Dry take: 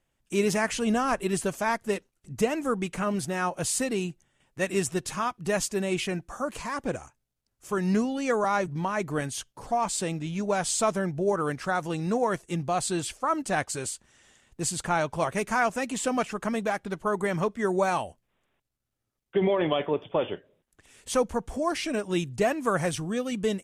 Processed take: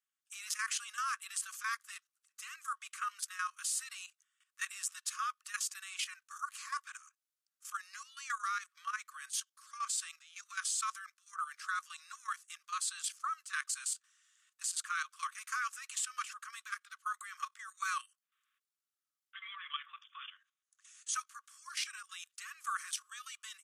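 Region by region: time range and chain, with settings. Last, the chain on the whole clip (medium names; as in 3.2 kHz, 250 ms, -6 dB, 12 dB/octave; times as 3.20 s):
20.01–21.15 s: brick-wall FIR low-pass 11 kHz + peaking EQ 6.5 kHz +10 dB 0.26 oct
whole clip: Chebyshev high-pass 1.1 kHz, order 10; peaking EQ 2.2 kHz -6 dB 0.97 oct; level held to a coarse grid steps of 12 dB; trim +1 dB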